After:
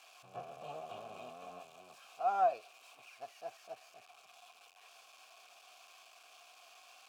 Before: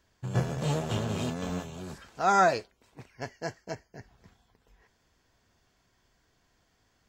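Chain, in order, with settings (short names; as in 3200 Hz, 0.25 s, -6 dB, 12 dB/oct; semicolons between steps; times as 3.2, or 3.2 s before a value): switching spikes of -22 dBFS; vowel filter a; gain -3 dB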